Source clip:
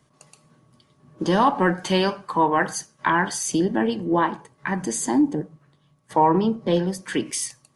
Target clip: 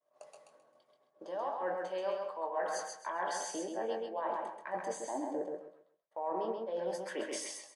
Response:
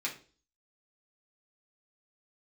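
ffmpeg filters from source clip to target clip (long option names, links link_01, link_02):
-filter_complex "[0:a]acrossover=split=9500[link_01][link_02];[link_02]acompressor=threshold=-50dB:ratio=4:attack=1:release=60[link_03];[link_01][link_03]amix=inputs=2:normalize=0,highpass=frequency=600:width_type=q:width=4.9,highshelf=frequency=2200:gain=-9.5,areverse,acompressor=threshold=-31dB:ratio=8,areverse,agate=range=-33dB:threshold=-52dB:ratio=3:detection=peak,asplit=2[link_04][link_05];[link_05]adelay=22,volume=-8dB[link_06];[link_04][link_06]amix=inputs=2:normalize=0,aecho=1:1:132|264|396|528:0.668|0.174|0.0452|0.0117,volume=-4.5dB"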